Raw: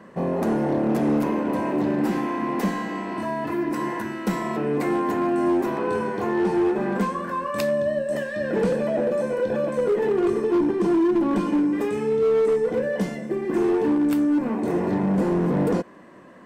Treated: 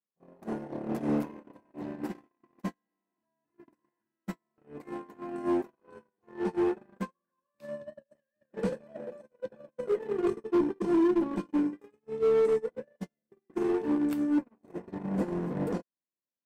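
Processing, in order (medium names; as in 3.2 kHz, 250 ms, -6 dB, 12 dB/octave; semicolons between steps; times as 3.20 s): gate -19 dBFS, range -57 dB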